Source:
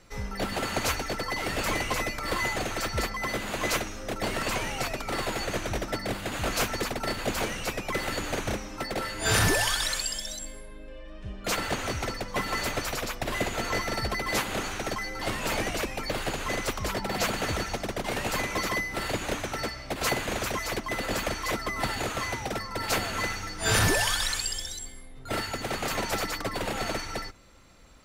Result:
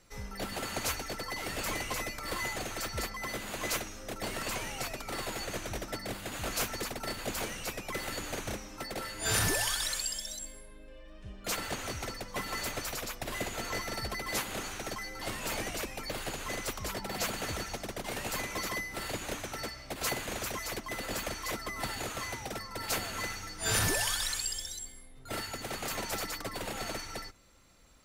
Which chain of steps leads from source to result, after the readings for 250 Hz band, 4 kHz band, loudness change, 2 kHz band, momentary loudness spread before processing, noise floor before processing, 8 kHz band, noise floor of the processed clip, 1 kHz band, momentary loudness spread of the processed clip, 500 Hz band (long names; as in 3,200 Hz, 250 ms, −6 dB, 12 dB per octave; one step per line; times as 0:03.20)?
−7.5 dB, −5.0 dB, −5.5 dB, −6.5 dB, 7 LU, −42 dBFS, −2.5 dB, −50 dBFS, −7.5 dB, 9 LU, −7.5 dB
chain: high-shelf EQ 5,800 Hz +8 dB
level −7.5 dB